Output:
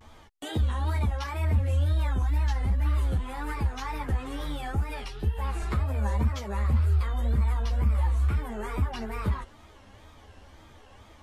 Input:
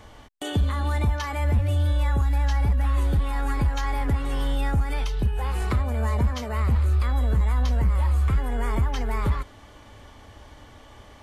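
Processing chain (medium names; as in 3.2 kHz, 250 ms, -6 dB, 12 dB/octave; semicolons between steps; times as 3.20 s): wow and flutter 150 cents; three-phase chorus; trim -1.5 dB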